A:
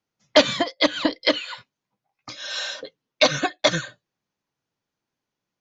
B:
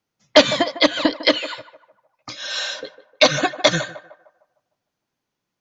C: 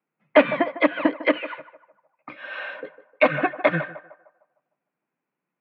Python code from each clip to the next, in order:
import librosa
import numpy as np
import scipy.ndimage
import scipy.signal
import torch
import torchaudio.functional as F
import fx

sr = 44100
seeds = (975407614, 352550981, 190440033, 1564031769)

y1 = fx.echo_banded(x, sr, ms=152, feedback_pct=44, hz=790.0, wet_db=-12.5)
y1 = y1 * librosa.db_to_amplitude(3.5)
y2 = scipy.signal.sosfilt(scipy.signal.cheby1(4, 1.0, [150.0, 2500.0], 'bandpass', fs=sr, output='sos'), y1)
y2 = y2 * librosa.db_to_amplitude(-1.5)